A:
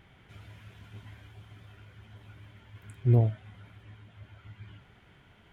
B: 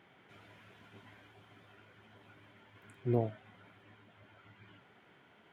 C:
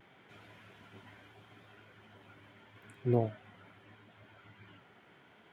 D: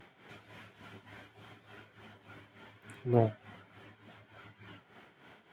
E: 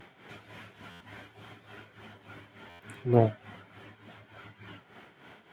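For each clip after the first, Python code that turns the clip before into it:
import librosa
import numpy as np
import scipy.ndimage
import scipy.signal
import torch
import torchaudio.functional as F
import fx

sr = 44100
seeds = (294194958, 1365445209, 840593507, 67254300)

y1 = scipy.signal.sosfilt(scipy.signal.butter(2, 250.0, 'highpass', fs=sr, output='sos'), x)
y1 = fx.high_shelf(y1, sr, hz=3000.0, db=-8.5)
y2 = fx.vibrato(y1, sr, rate_hz=0.77, depth_cents=33.0)
y2 = y2 * librosa.db_to_amplitude(2.0)
y3 = fx.cheby_harmonics(y2, sr, harmonics=(6,), levels_db=(-28,), full_scale_db=-15.0)
y3 = y3 * (1.0 - 0.7 / 2.0 + 0.7 / 2.0 * np.cos(2.0 * np.pi * 3.4 * (np.arange(len(y3)) / sr)))
y3 = y3 * librosa.db_to_amplitude(6.0)
y4 = fx.buffer_glitch(y3, sr, at_s=(0.9, 2.69), block=512, repeats=8)
y4 = y4 * librosa.db_to_amplitude(4.5)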